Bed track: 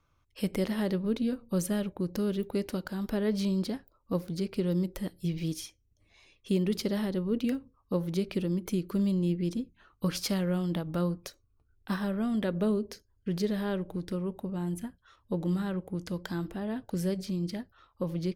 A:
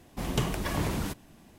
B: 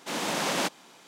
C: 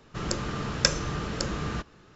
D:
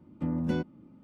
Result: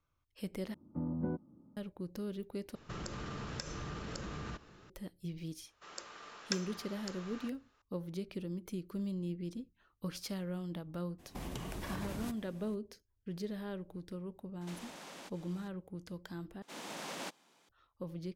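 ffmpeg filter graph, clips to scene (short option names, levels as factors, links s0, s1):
-filter_complex "[3:a]asplit=2[s0][s1];[2:a]asplit=2[s2][s3];[0:a]volume=0.299[s4];[4:a]lowpass=f=1200:w=0.5412,lowpass=f=1200:w=1.3066[s5];[s0]acompressor=threshold=0.0178:ratio=6:attack=3.2:release=140:knee=1:detection=peak[s6];[s1]highpass=630[s7];[1:a]acompressor=threshold=0.02:ratio=6:attack=3.2:release=140:knee=1:detection=peak[s8];[s2]acompressor=threshold=0.0112:ratio=6:attack=3.2:release=140:knee=1:detection=peak[s9];[s3]acrusher=bits=8:mode=log:mix=0:aa=0.000001[s10];[s4]asplit=4[s11][s12][s13][s14];[s11]atrim=end=0.744[s15];[s5]atrim=end=1.03,asetpts=PTS-STARTPTS,volume=0.447[s16];[s12]atrim=start=1.766:end=2.754[s17];[s6]atrim=end=2.15,asetpts=PTS-STARTPTS,volume=0.668[s18];[s13]atrim=start=4.896:end=16.624[s19];[s10]atrim=end=1.07,asetpts=PTS-STARTPTS,volume=0.178[s20];[s14]atrim=start=17.686[s21];[s7]atrim=end=2.15,asetpts=PTS-STARTPTS,volume=0.2,afade=t=in:d=0.004:c=hsin,afade=t=out:st=2.146:d=0.004:c=hsin,adelay=5670[s22];[s8]atrim=end=1.58,asetpts=PTS-STARTPTS,volume=0.631,afade=t=in:d=0.02,afade=t=out:st=1.56:d=0.02,adelay=11180[s23];[s9]atrim=end=1.07,asetpts=PTS-STARTPTS,volume=0.376,afade=t=in:d=0.004:c=hsin,afade=t=out:st=1.066:d=0.004:c=hsin,adelay=14610[s24];[s15][s16]acrossfade=d=0.004:c1=hsin:c2=hsin[s25];[s25][s17]acrossfade=d=0.004:c1=hsin:c2=hsin[s26];[s26][s18]acrossfade=d=0.004:c1=hsin:c2=hsin[s27];[s27][s19]acrossfade=d=0.004:c1=hsin:c2=hsin[s28];[s28][s20]acrossfade=d=0.004:c1=hsin:c2=hsin[s29];[s29][s21]acrossfade=d=0.004:c1=hsin:c2=hsin[s30];[s30][s22][s23][s24]amix=inputs=4:normalize=0"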